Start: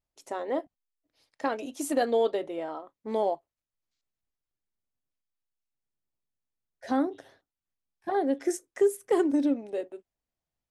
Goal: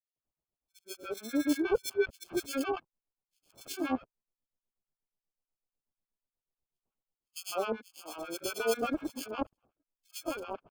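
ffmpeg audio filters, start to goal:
-filter_complex "[0:a]areverse,lowpass=f=7.9k:w=0.5412,lowpass=f=7.9k:w=1.3066,acrossover=split=270|2600[a][b][c];[c]asoftclip=type=hard:threshold=-38.5dB[d];[a][b][d]amix=inputs=3:normalize=0,acrusher=samples=23:mix=1:aa=0.000001,acrossover=split=1100[e][f];[e]aeval=exprs='val(0)*(1-1/2+1/2*cos(2*PI*8.2*n/s))':c=same[g];[f]aeval=exprs='val(0)*(1-1/2-1/2*cos(2*PI*8.2*n/s))':c=same[h];[g][h]amix=inputs=2:normalize=0,acrossover=split=3000[i][j];[i]adelay=160[k];[k][j]amix=inputs=2:normalize=0,volume=-1dB"

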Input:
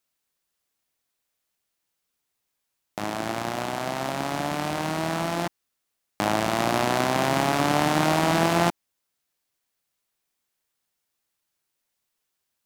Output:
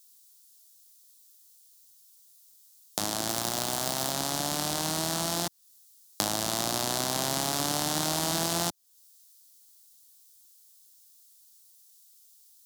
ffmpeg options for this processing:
-filter_complex "[0:a]asettb=1/sr,asplit=3[a][b][c];[a]atrim=end=3.284[d];[b]atrim=start=3.28:end=4.12,asetpts=PTS-STARTPTS,afade=t=in:d=0.004:c=qsin,afade=t=out:st=0.836:d=0.004:c=qsin,acrusher=bits=4:mode=log:mix=0:aa=0.000001[e];[c]atrim=start=4.116[f];[d][e]acrossfade=d=0.004:c1=hsin:c2=qsin[g];[g][f]acrossfade=d=0.004:c1=qsin:c2=hsin,acrossover=split=120|3100[h][i][j];[h]acompressor=threshold=-46dB:ratio=4[k];[i]acompressor=threshold=-30dB:ratio=4[l];[j]acompressor=threshold=-49dB:ratio=4[m];[k][l][m]amix=inputs=3:normalize=0,aexciter=amount=4.6:drive=9.2:freq=3.5k"

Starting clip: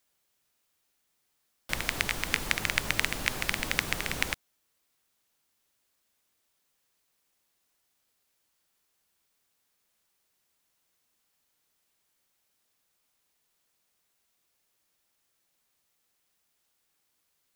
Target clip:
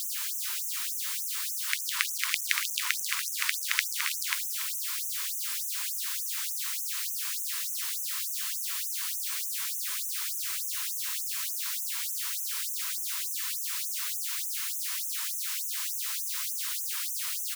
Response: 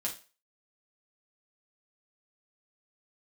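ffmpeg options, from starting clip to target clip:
-af "aeval=exprs='val(0)+0.5*0.0473*sgn(val(0))':c=same,aecho=1:1:285:0.237,afftfilt=real='re*gte(b*sr/1024,870*pow(5900/870,0.5+0.5*sin(2*PI*3.4*pts/sr)))':imag='im*gte(b*sr/1024,870*pow(5900/870,0.5+0.5*sin(2*PI*3.4*pts/sr)))':win_size=1024:overlap=0.75"

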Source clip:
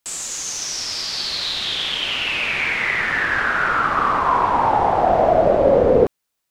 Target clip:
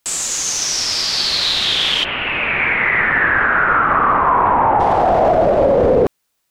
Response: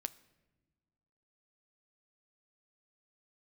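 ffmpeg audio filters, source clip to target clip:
-filter_complex "[0:a]asplit=3[a][b][c];[a]afade=t=out:st=2.03:d=0.02[d];[b]lowpass=f=2.3k:w=0.5412,lowpass=f=2.3k:w=1.3066,afade=t=in:st=2.03:d=0.02,afade=t=out:st=4.79:d=0.02[e];[c]afade=t=in:st=4.79:d=0.02[f];[d][e][f]amix=inputs=3:normalize=0,alimiter=limit=-13dB:level=0:latency=1:release=21,volume=7dB"

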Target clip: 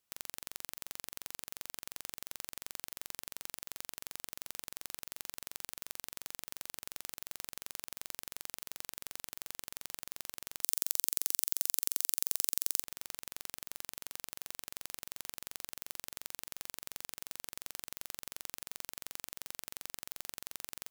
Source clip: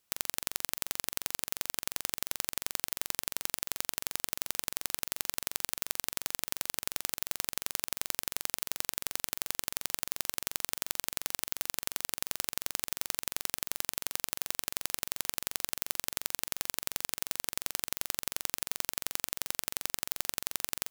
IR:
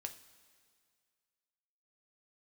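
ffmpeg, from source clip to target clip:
-filter_complex "[0:a]alimiter=limit=-6.5dB:level=0:latency=1:release=59,asettb=1/sr,asplit=3[a][b][c];[a]atrim=end=10.634[d];[b]atrim=start=10.63:end=12.83,asetpts=PTS-STARTPTS,afade=t=in:d=0.004:c=qsin,afade=t=out:st=2.196:d=0.004:c=qsin,bass=f=250:g=-14,treble=f=4k:g=14[e];[c]atrim=start=12.826[f];[d][e]acrossfade=d=0.004:c1=hsin:c2=qsin[g];[g][f]acrossfade=d=0.004:c1=qsin:c2=hsin,volume=-6dB"

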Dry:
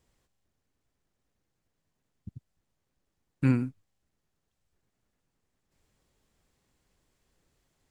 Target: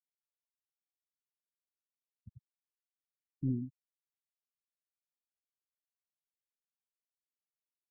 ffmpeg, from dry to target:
-af "asoftclip=type=tanh:threshold=-14.5dB,afftfilt=real='re*gte(hypot(re,im),0.0794)':imag='im*gte(hypot(re,im),0.0794)':win_size=1024:overlap=0.75,volume=-8dB"

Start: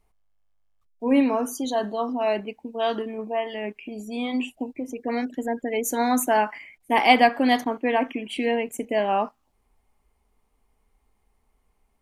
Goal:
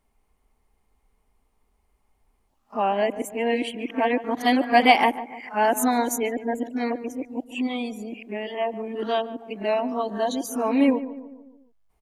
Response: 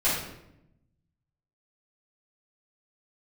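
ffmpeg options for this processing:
-filter_complex "[0:a]areverse,asplit=2[a][b];[b]adelay=146,lowpass=f=1.3k:p=1,volume=-13.5dB,asplit=2[c][d];[d]adelay=146,lowpass=f=1.3k:p=1,volume=0.52,asplit=2[e][f];[f]adelay=146,lowpass=f=1.3k:p=1,volume=0.52,asplit=2[g][h];[h]adelay=146,lowpass=f=1.3k:p=1,volume=0.52,asplit=2[i][j];[j]adelay=146,lowpass=f=1.3k:p=1,volume=0.52[k];[c][e][g][i][k]amix=inputs=5:normalize=0[l];[a][l]amix=inputs=2:normalize=0"

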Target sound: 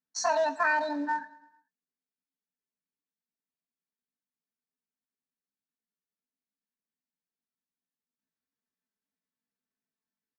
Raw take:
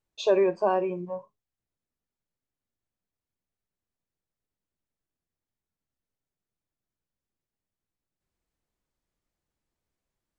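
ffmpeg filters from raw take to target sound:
-af "agate=range=-14dB:threshold=-49dB:ratio=16:detection=peak,highshelf=f=2.7k:g=10.5,aecho=1:1:7.4:0.91,acompressor=threshold=-28dB:ratio=2,acrusher=bits=5:mode=log:mix=0:aa=0.000001,asetrate=72056,aresample=44100,atempo=0.612027,highpass=130,equalizer=f=180:t=q:w=4:g=5,equalizer=f=270:t=q:w=4:g=9,equalizer=f=590:t=q:w=4:g=-4,equalizer=f=1.7k:t=q:w=4:g=8,equalizer=f=3.1k:t=q:w=4:g=-7,lowpass=f=5.9k:w=0.5412,lowpass=f=5.9k:w=1.3066,aecho=1:1:108|216|324|432:0.1|0.053|0.0281|0.0149"

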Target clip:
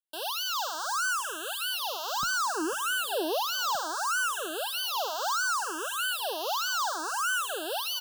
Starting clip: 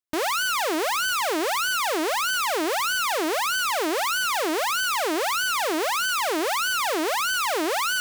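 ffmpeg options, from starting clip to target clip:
-filter_complex "[0:a]asetnsamples=n=441:p=0,asendcmd='2.23 highpass f 240;3.75 highpass f 640',highpass=930,acontrast=26,asuperstop=centerf=2100:order=20:qfactor=2.1,asplit=4[a][b][c][d];[b]adelay=495,afreqshift=87,volume=-18dB[e];[c]adelay=990,afreqshift=174,volume=-27.1dB[f];[d]adelay=1485,afreqshift=261,volume=-36.2dB[g];[a][e][f][g]amix=inputs=4:normalize=0,asplit=2[h][i];[i]afreqshift=0.66[j];[h][j]amix=inputs=2:normalize=1,volume=-6.5dB"

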